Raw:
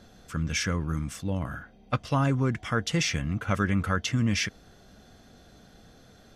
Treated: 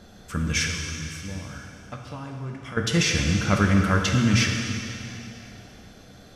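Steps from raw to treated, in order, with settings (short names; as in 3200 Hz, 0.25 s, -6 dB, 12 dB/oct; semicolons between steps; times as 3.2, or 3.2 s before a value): 0.66–2.77 compressor 4:1, threshold -42 dBFS, peak gain reduction 17.5 dB; plate-style reverb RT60 2.8 s, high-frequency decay 1×, DRR 1 dB; gain +3.5 dB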